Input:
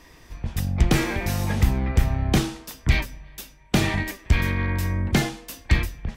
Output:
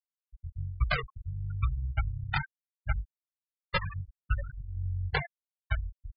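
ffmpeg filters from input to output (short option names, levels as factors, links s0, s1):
-af "aresample=11025,acrusher=samples=12:mix=1:aa=0.000001:lfo=1:lforange=7.2:lforate=1.1,aresample=44100,firequalizer=gain_entry='entry(130,0);entry(240,-20);entry(400,0);entry(1500,13)':delay=0.05:min_phase=1,flanger=delay=16.5:depth=5.9:speed=1.1,afftfilt=real='re*gte(hypot(re,im),0.251)':imag='im*gte(hypot(re,im),0.251)':win_size=1024:overlap=0.75,volume=0.447"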